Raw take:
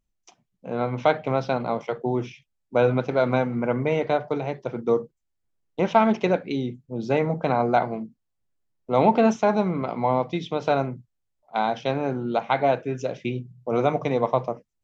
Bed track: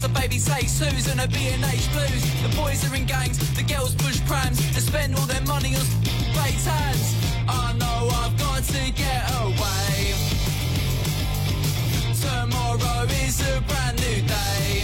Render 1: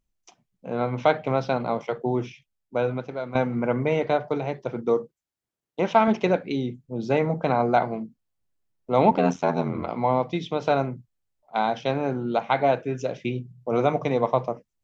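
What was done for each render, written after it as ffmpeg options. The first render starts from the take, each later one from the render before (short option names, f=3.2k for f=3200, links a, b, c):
-filter_complex "[0:a]asettb=1/sr,asplit=3[a][b][c];[a]atrim=end=4.894[d];[b]atrim=start=4.89:end=6.08,asetpts=PTS-STARTPTS,afade=t=in:d=0.004:c=qsin,afade=t=out:st=1.186:d=0.004:c=qsin,highpass=f=190:p=1[e];[c]atrim=start=6.076[f];[d][e]acrossfade=d=0.004:c1=hsin:c2=qsin[g];[g][f]acrossfade=d=0.004:c1=qsin:c2=hsin,asettb=1/sr,asplit=3[h][i][j];[h]atrim=end=9.104[k];[i]atrim=start=9.1:end=9.91,asetpts=PTS-STARTPTS,afade=t=in:d=0.004:c=qsin,afade=t=out:st=0.806:d=0.004:c=qsin,aeval=exprs='val(0)*sin(2*PI*42*n/s)':c=same[l];[j]atrim=start=9.906[m];[k][l]acrossfade=d=0.004:c1=hsin:c2=qsin[n];[n][m]acrossfade=d=0.004:c1=qsin:c2=hsin,asplit=2[o][p];[o]atrim=end=3.35,asetpts=PTS-STARTPTS,afade=t=out:st=2.17:d=1.18:silence=0.211349[q];[p]atrim=start=3.35,asetpts=PTS-STARTPTS,afade=t=in:d=0.004:c=hsin:silence=0.211349[r];[q][r]concat=n=2:v=0:a=1"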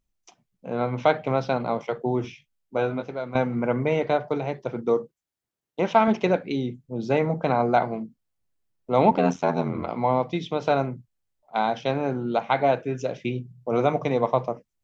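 -filter_complex "[0:a]asettb=1/sr,asplit=3[a][b][c];[a]atrim=end=2.224[d];[b]atrim=start=2.22:end=3.11,asetpts=PTS-STARTPTS,afade=t=in:d=0.004:c=qsin,afade=t=out:st=0.886:d=0.004:c=qsin,asplit=2[e][f];[f]adelay=19,volume=-5dB[g];[e][g]amix=inputs=2:normalize=0,atrim=end_sample=39249[h];[c]atrim=start=3.106[i];[d][h]acrossfade=d=0.004:c1=hsin:c2=qsin[j];[j][i]acrossfade=d=0.004:c1=qsin:c2=hsin"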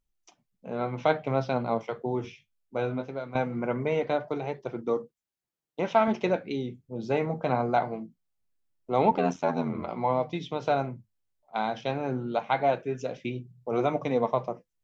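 -af "flanger=delay=2.1:depth=8.6:regen=66:speed=0.22:shape=triangular"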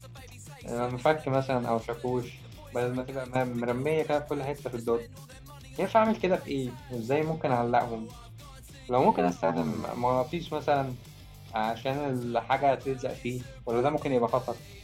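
-filter_complex "[1:a]volume=-24.5dB[a];[0:a][a]amix=inputs=2:normalize=0"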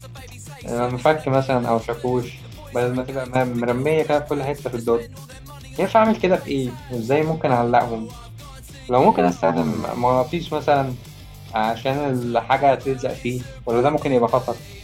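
-af "volume=8.5dB,alimiter=limit=-3dB:level=0:latency=1"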